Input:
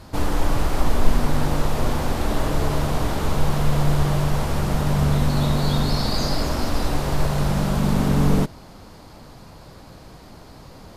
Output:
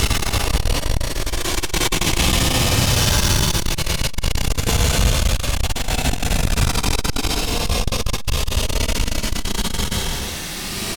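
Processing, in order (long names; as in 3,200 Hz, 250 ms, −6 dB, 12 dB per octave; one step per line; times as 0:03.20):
flat-topped bell 3,900 Hz +15 dB
mains-hum notches 50/100/150/200/250 Hz
downward compressor 2 to 1, threshold −25 dBFS, peak gain reduction 10.5 dB
pitch-shifted copies added −5 semitones −9 dB, +12 semitones −2 dB
harmonic generator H 5 −9 dB, 6 −21 dB, 7 −8 dB, 8 −8 dB, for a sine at −7 dBFS
extreme stretch with random phases 31×, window 0.05 s, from 0:00.80
repeating echo 174 ms, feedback 35%, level −15 dB
regular buffer underruns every 0.80 s, samples 256, repeat, from 0:00.68
saturating transformer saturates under 140 Hz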